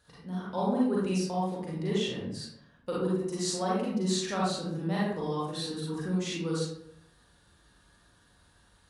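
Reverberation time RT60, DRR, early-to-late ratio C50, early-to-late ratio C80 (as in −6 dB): 0.75 s, −7.0 dB, −2.0 dB, 3.5 dB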